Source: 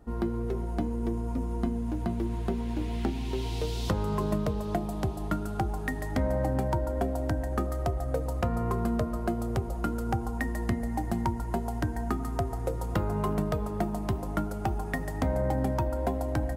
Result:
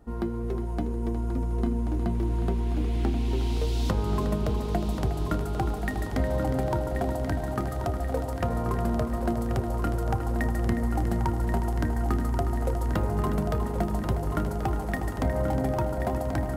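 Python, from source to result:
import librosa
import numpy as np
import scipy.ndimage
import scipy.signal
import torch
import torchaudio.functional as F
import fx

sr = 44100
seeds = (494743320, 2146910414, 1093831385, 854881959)

y = fx.echo_heads(x, sr, ms=361, heads='first and third', feedback_pct=74, wet_db=-10.0)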